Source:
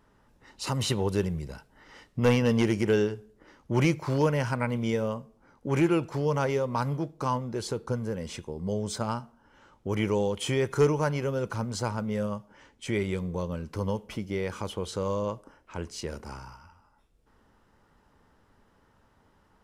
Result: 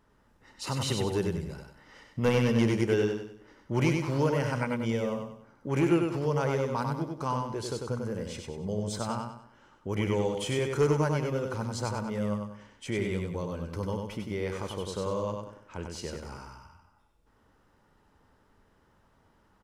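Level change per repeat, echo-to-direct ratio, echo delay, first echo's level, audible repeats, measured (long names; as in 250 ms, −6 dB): −8.5 dB, −3.5 dB, 96 ms, −4.0 dB, 4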